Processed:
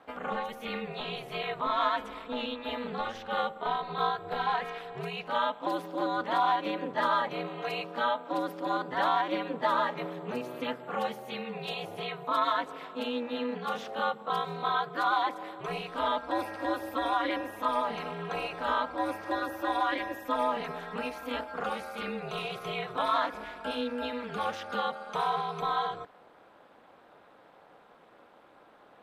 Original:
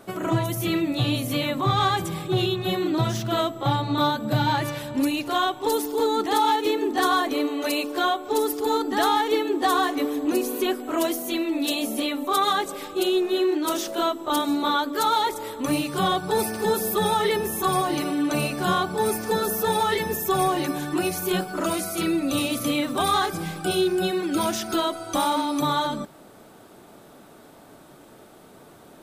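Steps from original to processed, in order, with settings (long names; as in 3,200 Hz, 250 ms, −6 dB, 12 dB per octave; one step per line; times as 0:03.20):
three-way crossover with the lows and the highs turned down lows −22 dB, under 410 Hz, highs −23 dB, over 3,400 Hz
ring modulation 120 Hz
level −1.5 dB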